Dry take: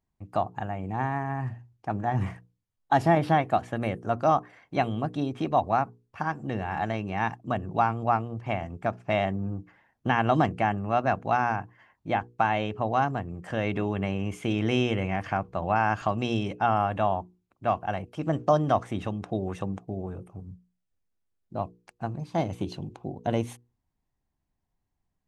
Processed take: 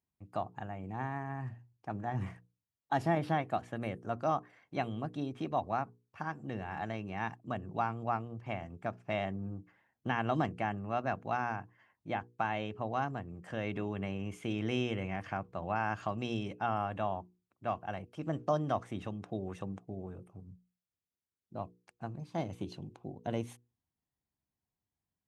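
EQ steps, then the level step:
high-pass filter 74 Hz
parametric band 800 Hz −2 dB
−8.0 dB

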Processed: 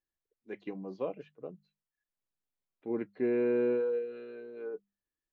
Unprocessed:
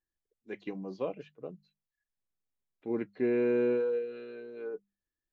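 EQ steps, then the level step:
low-shelf EQ 160 Hz −5 dB
high-shelf EQ 2,800 Hz −8.5 dB
0.0 dB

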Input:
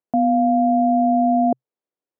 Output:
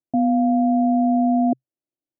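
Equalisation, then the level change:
Gaussian smoothing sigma 15 samples
phaser with its sweep stopped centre 300 Hz, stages 8
+5.0 dB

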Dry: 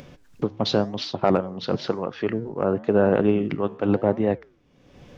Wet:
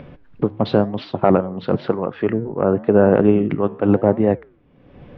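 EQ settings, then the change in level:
high-frequency loss of the air 460 metres
+6.5 dB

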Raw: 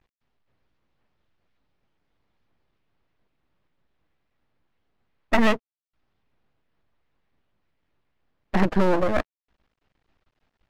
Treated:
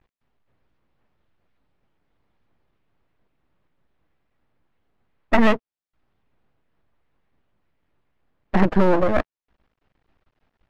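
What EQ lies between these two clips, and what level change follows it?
high-shelf EQ 3,900 Hz −10 dB
+3.5 dB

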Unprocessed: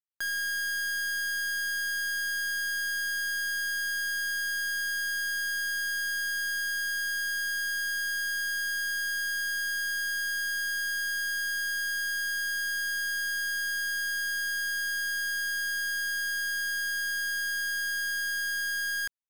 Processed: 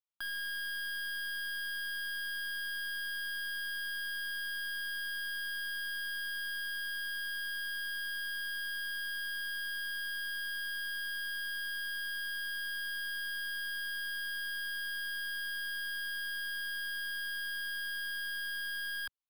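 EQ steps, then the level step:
parametric band 110 Hz −13 dB 0.9 octaves
high-shelf EQ 6,700 Hz −7.5 dB
phaser with its sweep stopped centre 1,900 Hz, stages 6
0.0 dB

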